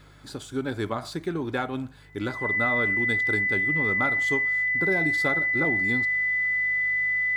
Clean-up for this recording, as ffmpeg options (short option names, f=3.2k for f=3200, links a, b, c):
-af "bandreject=f=50.6:t=h:w=4,bandreject=f=101.2:t=h:w=4,bandreject=f=151.8:t=h:w=4,bandreject=f=2k:w=30"